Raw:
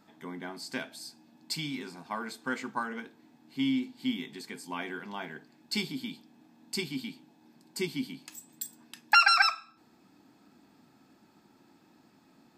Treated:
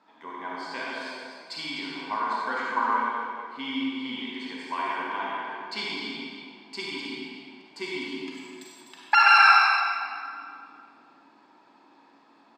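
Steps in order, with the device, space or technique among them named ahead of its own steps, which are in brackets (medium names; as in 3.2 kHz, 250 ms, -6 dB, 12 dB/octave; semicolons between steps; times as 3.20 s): station announcement (band-pass 400–3900 Hz; peaking EQ 1 kHz +9.5 dB 0.28 oct; loudspeakers at several distances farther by 33 m -10 dB, 86 m -9 dB; reverberation RT60 2.2 s, pre-delay 35 ms, DRR -4.5 dB)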